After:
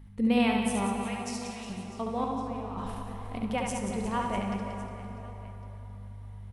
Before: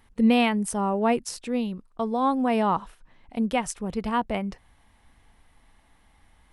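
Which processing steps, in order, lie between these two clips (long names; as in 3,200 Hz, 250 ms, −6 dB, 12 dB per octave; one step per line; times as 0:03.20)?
0:02.24–0:03.43: compressor whose output falls as the input rises −31 dBFS, ratio −0.5
mains hum 50 Hz, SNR 14 dB
0:00.86–0:01.70: flat-topped band-pass 4,600 Hz, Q 0.62
on a send: reverse bouncing-ball delay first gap 70 ms, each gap 1.6×, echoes 5
on the sum: dense smooth reverb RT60 4.1 s, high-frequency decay 0.6×, DRR 4 dB
level −7 dB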